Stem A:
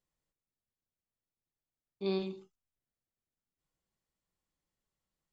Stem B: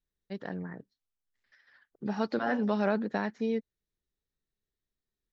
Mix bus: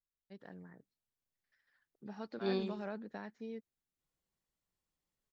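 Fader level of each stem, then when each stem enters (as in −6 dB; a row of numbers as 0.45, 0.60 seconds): −2.0, −14.5 decibels; 0.40, 0.00 seconds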